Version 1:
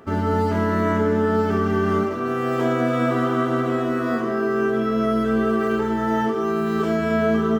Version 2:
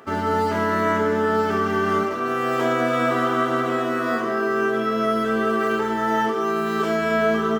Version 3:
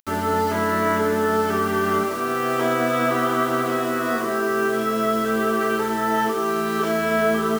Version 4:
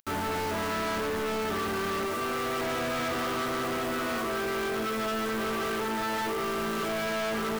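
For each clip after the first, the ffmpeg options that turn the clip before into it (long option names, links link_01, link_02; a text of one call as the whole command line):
ffmpeg -i in.wav -af "highpass=79,lowshelf=frequency=390:gain=-11.5,volume=4.5dB" out.wav
ffmpeg -i in.wav -af "acrusher=bits=5:mix=0:aa=0.000001" out.wav
ffmpeg -i in.wav -af "volume=28dB,asoftclip=hard,volume=-28dB,volume=-1dB" out.wav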